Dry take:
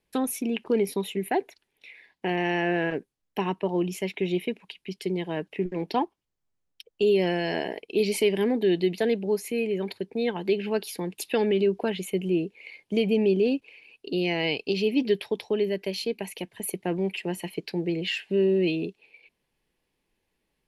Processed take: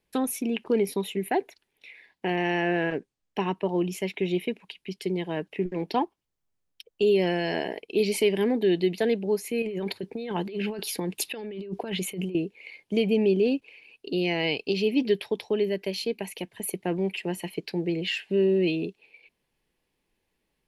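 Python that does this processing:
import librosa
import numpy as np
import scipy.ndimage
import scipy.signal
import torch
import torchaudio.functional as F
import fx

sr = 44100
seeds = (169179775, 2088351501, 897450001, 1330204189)

y = fx.lowpass(x, sr, hz=8900.0, slope=24, at=(2.96, 3.55))
y = fx.over_compress(y, sr, threshold_db=-32.0, ratio=-1.0, at=(9.62, 12.35))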